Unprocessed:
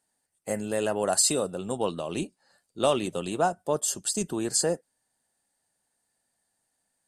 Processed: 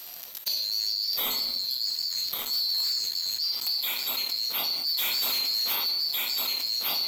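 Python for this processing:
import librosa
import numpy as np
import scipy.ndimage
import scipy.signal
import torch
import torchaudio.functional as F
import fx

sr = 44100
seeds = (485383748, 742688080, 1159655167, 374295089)

p1 = fx.band_swap(x, sr, width_hz=4000)
p2 = fx.high_shelf(p1, sr, hz=10000.0, db=6.0)
p3 = fx.hum_notches(p2, sr, base_hz=50, count=8)
p4 = p3 + fx.echo_feedback(p3, sr, ms=1153, feedback_pct=34, wet_db=-15.5, dry=0)
p5 = fx.gate_flip(p4, sr, shuts_db=-25.0, range_db=-27)
p6 = fx.room_shoebox(p5, sr, seeds[0], volume_m3=190.0, walls='mixed', distance_m=0.74)
p7 = (np.mod(10.0 ** (37.0 / 20.0) * p6 + 1.0, 2.0) - 1.0) / 10.0 ** (37.0 / 20.0)
p8 = p6 + (p7 * librosa.db_to_amplitude(-8.0))
p9 = fx.leveller(p8, sr, passes=3)
p10 = fx.low_shelf(p9, sr, hz=280.0, db=-8.0)
p11 = fx.leveller(p10, sr, passes=1)
y = fx.env_flatten(p11, sr, amount_pct=70)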